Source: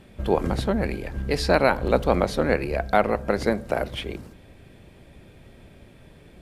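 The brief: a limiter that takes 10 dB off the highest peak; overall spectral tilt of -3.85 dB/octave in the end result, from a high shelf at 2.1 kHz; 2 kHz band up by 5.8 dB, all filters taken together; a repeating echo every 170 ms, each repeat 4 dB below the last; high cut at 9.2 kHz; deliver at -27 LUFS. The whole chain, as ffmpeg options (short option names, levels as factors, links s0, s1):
-af "lowpass=9200,equalizer=f=2000:t=o:g=6,highshelf=f=2100:g=3,alimiter=limit=0.282:level=0:latency=1,aecho=1:1:170|340|510|680|850|1020|1190|1360|1530:0.631|0.398|0.25|0.158|0.0994|0.0626|0.0394|0.0249|0.0157,volume=0.708"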